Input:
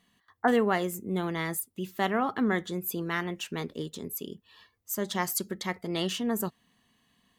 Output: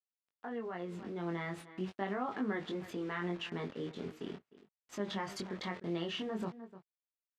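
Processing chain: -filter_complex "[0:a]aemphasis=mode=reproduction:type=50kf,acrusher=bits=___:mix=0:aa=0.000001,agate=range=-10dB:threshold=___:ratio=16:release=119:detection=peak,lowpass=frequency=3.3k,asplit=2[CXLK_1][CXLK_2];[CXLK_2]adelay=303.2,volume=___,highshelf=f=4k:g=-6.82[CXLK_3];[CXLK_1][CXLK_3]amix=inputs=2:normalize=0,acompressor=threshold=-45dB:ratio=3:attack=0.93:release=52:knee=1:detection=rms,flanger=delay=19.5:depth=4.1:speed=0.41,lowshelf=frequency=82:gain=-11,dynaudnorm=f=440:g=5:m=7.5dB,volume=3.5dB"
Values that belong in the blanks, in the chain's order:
7, -44dB, -28dB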